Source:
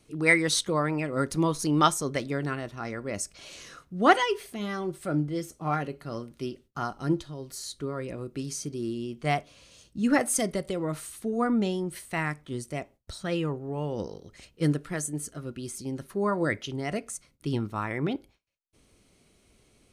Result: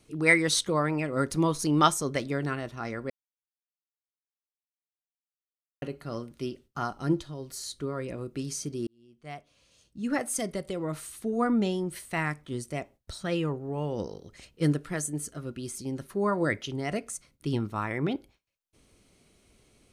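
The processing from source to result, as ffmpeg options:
ffmpeg -i in.wav -filter_complex "[0:a]asplit=4[link_01][link_02][link_03][link_04];[link_01]atrim=end=3.1,asetpts=PTS-STARTPTS,afade=type=out:start_time=3.096:duration=0.004:curve=hsin[link_05];[link_02]atrim=start=3.1:end=5.82,asetpts=PTS-STARTPTS,volume=0[link_06];[link_03]atrim=start=5.82:end=8.87,asetpts=PTS-STARTPTS,afade=type=in:duration=0.004:curve=hsin,afade=type=out:start_time=3.046:duration=0.004:curve=hsin[link_07];[link_04]atrim=start=8.87,asetpts=PTS-STARTPTS,afade=type=in:duration=2.49[link_08];[link_05][link_06][link_07][link_08]concat=n=4:v=0:a=1" out.wav

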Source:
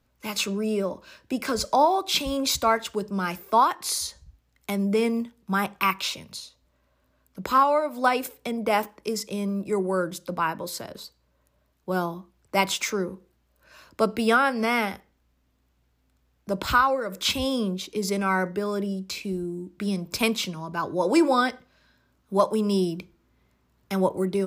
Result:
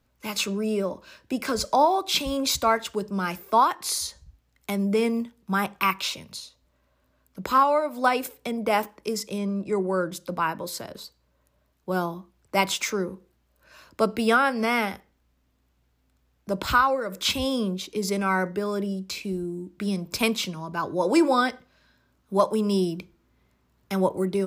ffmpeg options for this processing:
ffmpeg -i in.wav -filter_complex "[0:a]asettb=1/sr,asplit=3[link_01][link_02][link_03];[link_01]atrim=end=9.384[link_04];[link_02]atrim=start=9.38:end=10.12,asetpts=PTS-STARTPTS,afade=type=in:duration=0.004:curve=qsin,afade=type=out:start_time=0.736:duration=0.004:curve=qsin,lowpass=7000[link_05];[link_03]atrim=start=10.116[link_06];[link_04][link_05]acrossfade=duration=0.004:curve1=hsin:curve2=qsin[link_07];[link_07][link_06]acrossfade=duration=0.004:curve1=qsin:curve2=hsin" out.wav

